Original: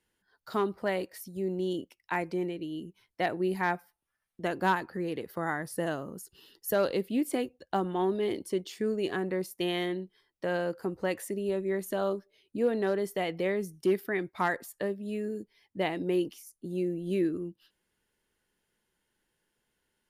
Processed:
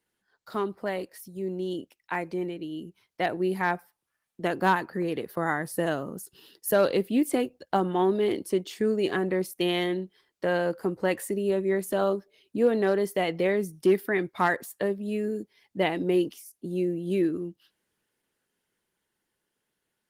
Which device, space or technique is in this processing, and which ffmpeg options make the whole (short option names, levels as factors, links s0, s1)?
video call: -filter_complex "[0:a]asettb=1/sr,asplit=3[s0][s1][s2];[s0]atrim=end=5.024[s3];[s1]atrim=start=5.02:end=5.42,asetpts=PTS-STARTPTS,afade=t=in:d=0.004:c=qsin,afade=t=out:st=0.396:d=0.004:c=qsin,agate=range=0.126:threshold=0.00355:ratio=16:detection=peak[s4];[s2]atrim=start=5.416[s5];[s3][s4]acrossfade=d=0.004:c1=hsin:c2=qsin[s6];[s6][s5]acrossfade=d=0.004:c1=qsin:c2=hsin,highpass=100,dynaudnorm=f=540:g=13:m=1.78" -ar 48000 -c:a libopus -b:a 20k